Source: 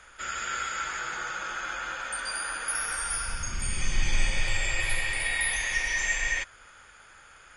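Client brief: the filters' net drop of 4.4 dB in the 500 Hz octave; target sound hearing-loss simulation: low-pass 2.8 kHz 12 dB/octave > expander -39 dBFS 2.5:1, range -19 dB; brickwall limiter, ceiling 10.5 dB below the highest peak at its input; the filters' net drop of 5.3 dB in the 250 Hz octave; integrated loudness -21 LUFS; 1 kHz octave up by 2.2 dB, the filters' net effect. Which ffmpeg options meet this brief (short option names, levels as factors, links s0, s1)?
-af "equalizer=f=250:t=o:g=-7,equalizer=f=500:t=o:g=-5.5,equalizer=f=1000:t=o:g=5,alimiter=limit=0.0708:level=0:latency=1,lowpass=2800,agate=range=0.112:threshold=0.0112:ratio=2.5,volume=4.22"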